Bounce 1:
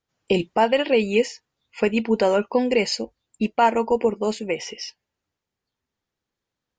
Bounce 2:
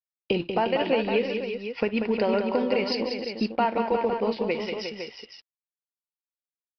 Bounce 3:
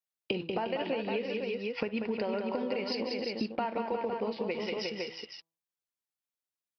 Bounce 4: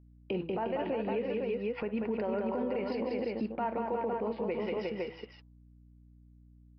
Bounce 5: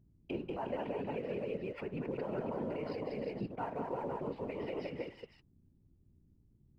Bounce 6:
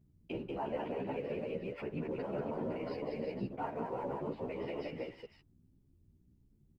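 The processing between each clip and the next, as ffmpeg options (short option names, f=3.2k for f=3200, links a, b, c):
-af "acompressor=threshold=-26dB:ratio=2.5,aresample=11025,aeval=exprs='sgn(val(0))*max(abs(val(0))-0.00282,0)':c=same,aresample=44100,aecho=1:1:58|188|267|356|507:0.112|0.447|0.1|0.376|0.355,volume=1.5dB"
-af "highpass=66,bandreject=f=164.4:t=h:w=4,bandreject=f=328.8:t=h:w=4,bandreject=f=493.2:t=h:w=4,bandreject=f=657.6:t=h:w=4,bandreject=f=822:t=h:w=4,bandreject=f=986.4:t=h:w=4,bandreject=f=1.1508k:t=h:w=4,acompressor=threshold=-30dB:ratio=5"
-af "lowpass=1.7k,alimiter=level_in=3dB:limit=-24dB:level=0:latency=1:release=11,volume=-3dB,aeval=exprs='val(0)+0.00126*(sin(2*PI*60*n/s)+sin(2*PI*2*60*n/s)/2+sin(2*PI*3*60*n/s)/3+sin(2*PI*4*60*n/s)/4+sin(2*PI*5*60*n/s)/5)':c=same,volume=2dB"
-filter_complex "[0:a]asplit=2[a][b];[b]aeval=exprs='sgn(val(0))*max(abs(val(0))-0.00224,0)':c=same,volume=-5.5dB[c];[a][c]amix=inputs=2:normalize=0,afftfilt=real='hypot(re,im)*cos(2*PI*random(0))':imag='hypot(re,im)*sin(2*PI*random(1))':win_size=512:overlap=0.75,volume=-3dB"
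-filter_complex "[0:a]asplit=2[a][b];[b]adelay=11.9,afreqshift=1.7[c];[a][c]amix=inputs=2:normalize=1,volume=3dB"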